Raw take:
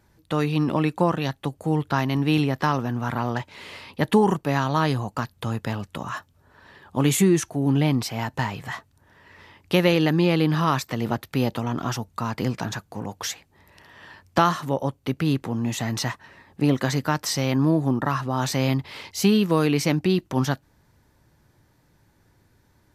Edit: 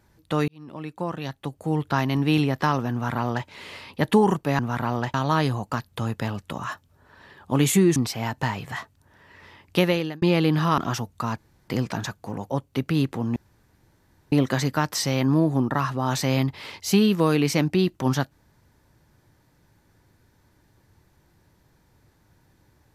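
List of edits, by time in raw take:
0.48–1.99 s: fade in
2.92–3.47 s: copy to 4.59 s
7.41–7.92 s: delete
9.74–10.18 s: fade out
10.74–11.76 s: delete
12.36 s: insert room tone 0.30 s
13.18–14.81 s: delete
15.67–16.63 s: room tone

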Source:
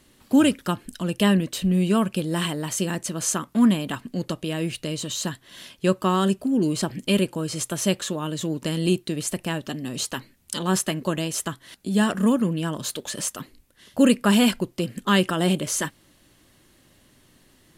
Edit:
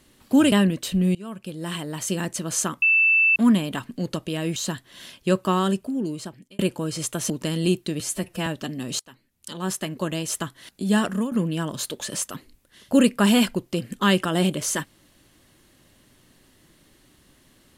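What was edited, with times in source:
0.52–1.22 s: delete
1.85–2.93 s: fade in, from -23.5 dB
3.52 s: add tone 2.65 kHz -14.5 dBFS 0.54 s
4.72–5.13 s: delete
6.09–7.16 s: fade out
7.87–8.51 s: delete
9.21–9.52 s: stretch 1.5×
10.05–11.39 s: fade in, from -23.5 dB
12.12–12.37 s: fade out, to -13.5 dB

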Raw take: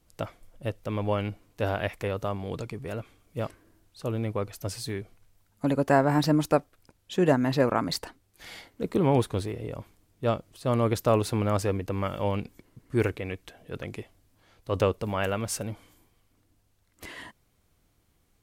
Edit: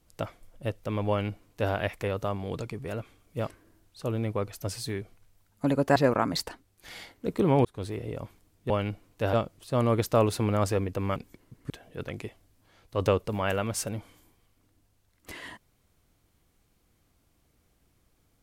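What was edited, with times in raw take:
1.09–1.72 s: copy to 10.26 s
5.96–7.52 s: delete
9.21–9.54 s: fade in
12.09–12.41 s: delete
12.95–13.44 s: delete

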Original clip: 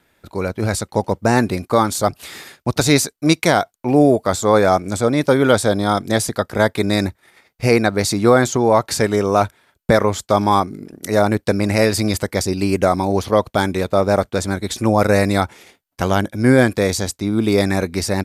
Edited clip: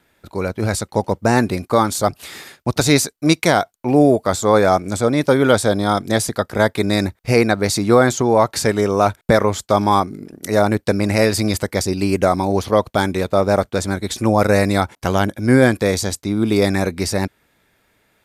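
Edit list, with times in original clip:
shorten pauses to 0.14 s

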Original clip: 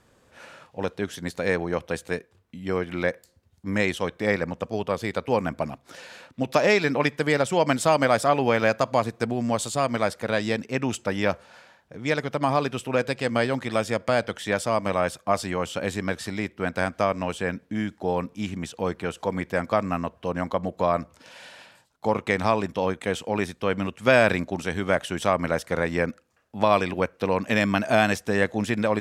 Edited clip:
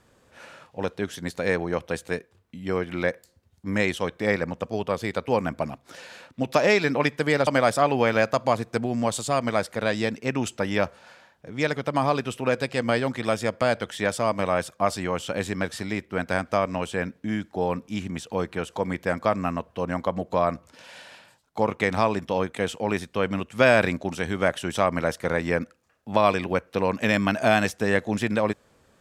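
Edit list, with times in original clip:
7.47–7.94 s: delete

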